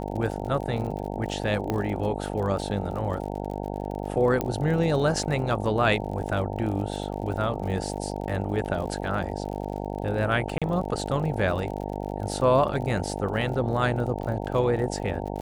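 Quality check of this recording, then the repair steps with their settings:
buzz 50 Hz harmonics 18 -32 dBFS
crackle 51 per s -34 dBFS
1.70 s: pop -14 dBFS
4.41 s: pop -12 dBFS
10.58–10.62 s: dropout 36 ms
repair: de-click; de-hum 50 Hz, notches 18; interpolate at 10.58 s, 36 ms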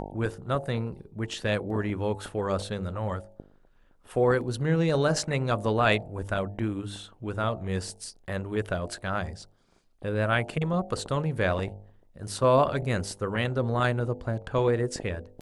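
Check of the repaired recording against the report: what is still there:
1.70 s: pop
4.41 s: pop

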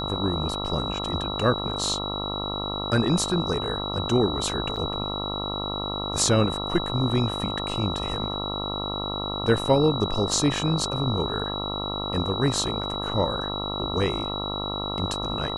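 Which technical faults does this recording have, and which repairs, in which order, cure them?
buzz 50 Hz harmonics 27 -32 dBFS
whine 3.9 kHz -31 dBFS
4.76–4.77 s: dropout 6.7 ms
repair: de-hum 50 Hz, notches 27; band-stop 3.9 kHz, Q 30; interpolate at 4.76 s, 6.7 ms

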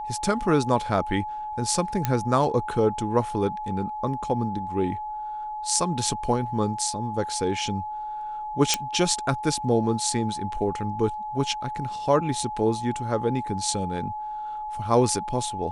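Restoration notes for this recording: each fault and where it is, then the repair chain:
whine 850 Hz -30 dBFS
2.05 s: pop -8 dBFS
8.74 s: pop -4 dBFS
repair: de-click; band-stop 850 Hz, Q 30

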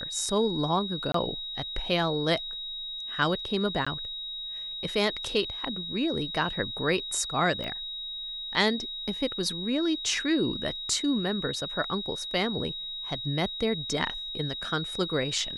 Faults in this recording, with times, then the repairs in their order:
whine 3.8 kHz -34 dBFS
1.12–1.14 s: dropout 23 ms
3.85–3.87 s: dropout 15 ms
7.64 s: pop -22 dBFS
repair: de-click; band-stop 3.8 kHz, Q 30; interpolate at 1.12 s, 23 ms; interpolate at 3.85 s, 15 ms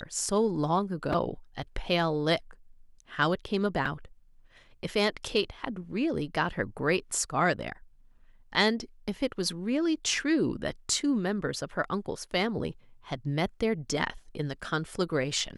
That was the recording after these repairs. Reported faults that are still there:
7.64 s: pop

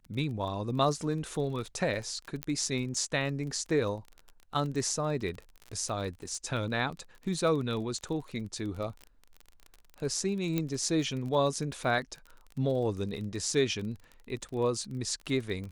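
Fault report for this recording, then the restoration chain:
crackle 31 per s -37 dBFS
2.43 s: pop -16 dBFS
10.58 s: pop -16 dBFS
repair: de-click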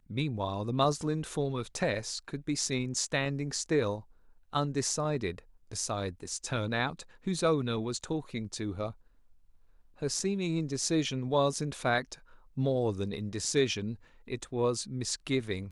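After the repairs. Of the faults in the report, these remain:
2.43 s: pop

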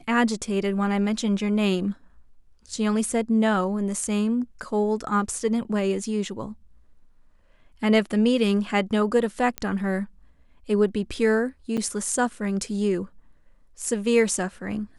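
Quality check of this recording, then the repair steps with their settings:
9.58 s: pop -12 dBFS
11.77–11.78 s: dropout 6.6 ms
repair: de-click; interpolate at 11.77 s, 6.6 ms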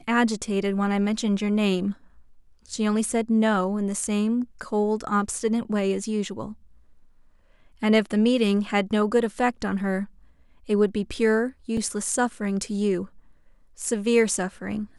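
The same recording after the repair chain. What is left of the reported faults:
nothing left

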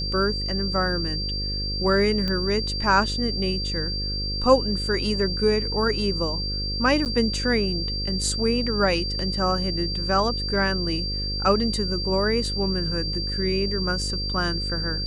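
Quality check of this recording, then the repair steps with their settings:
buzz 50 Hz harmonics 11 -30 dBFS
whine 4.7 kHz -28 dBFS
2.28 s: pop -15 dBFS
7.05–7.06 s: dropout 8.9 ms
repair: de-click; de-hum 50 Hz, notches 11; band-stop 4.7 kHz, Q 30; interpolate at 7.05 s, 8.9 ms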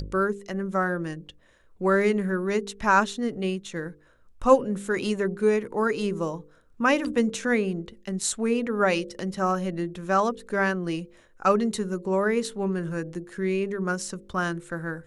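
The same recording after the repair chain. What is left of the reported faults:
nothing left

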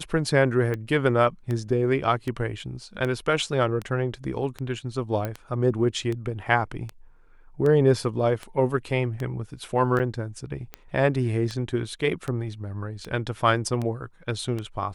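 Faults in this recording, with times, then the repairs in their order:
tick 78 rpm -18 dBFS
5.25 s: pop -16 dBFS
9.99–10.00 s: dropout 6.7 ms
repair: de-click; interpolate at 9.99 s, 6.7 ms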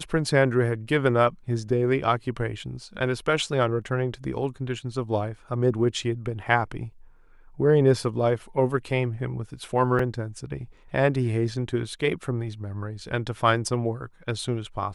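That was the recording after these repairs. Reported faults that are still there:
nothing left

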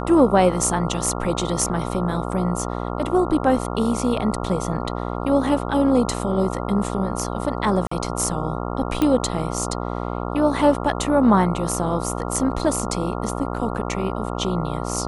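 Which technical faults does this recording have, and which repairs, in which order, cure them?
buzz 60 Hz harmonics 23 -27 dBFS
7.87–7.91 s: dropout 44 ms
9.02 s: pop -8 dBFS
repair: de-click; de-hum 60 Hz, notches 23; interpolate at 7.87 s, 44 ms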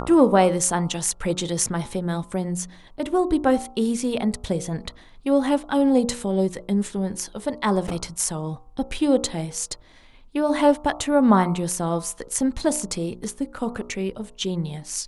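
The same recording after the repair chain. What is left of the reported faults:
nothing left

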